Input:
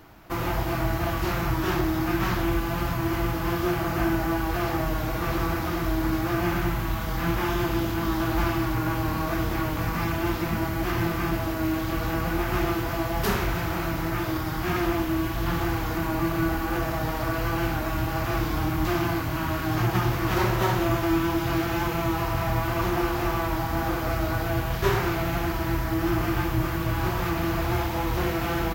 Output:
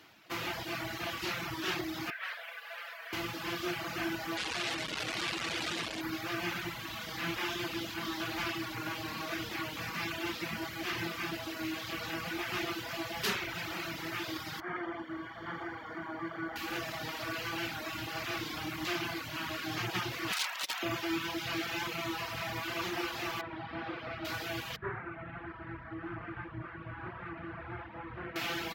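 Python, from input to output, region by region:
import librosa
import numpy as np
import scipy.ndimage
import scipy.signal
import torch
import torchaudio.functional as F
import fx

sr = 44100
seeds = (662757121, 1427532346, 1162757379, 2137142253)

y = fx.chain(x, sr, fx.cheby_ripple_highpass(hz=440.0, ripple_db=9),
    fx.peak_eq(hz=7000.0, db=-10.0, octaves=0.88),
    fx.mod_noise(seeds[0], snr_db=25), at=(2.1, 3.13))
y = fx.chain(y, sr, fx.clip_1bit(),
    fx.air_absorb(metres=57.0), at=(4.37, 6.01))
y = fx.chain(y, sr, fx.savgol(points=41),
    fx.low_shelf(hz=210.0, db=-8.0), at=(14.6, 16.56))
y = fx.chain(y, sr, fx.highpass(hz=770.0, slope=24),
    fx.overflow_wrap(gain_db=21.0),
    fx.transformer_sat(knee_hz=400.0), at=(20.32, 20.83))
y = fx.chain(y, sr, fx.highpass(hz=54.0, slope=12),
    fx.air_absorb(metres=360.0), at=(23.41, 24.25))
y = fx.chain(y, sr, fx.ladder_lowpass(hz=1900.0, resonance_pct=35),
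    fx.low_shelf(hz=160.0, db=11.5), at=(24.76, 28.36))
y = fx.weighting(y, sr, curve='D')
y = fx.dereverb_blind(y, sr, rt60_s=0.98)
y = scipy.signal.sosfilt(scipy.signal.butter(2, 75.0, 'highpass', fs=sr, output='sos'), y)
y = F.gain(torch.from_numpy(y), -9.0).numpy()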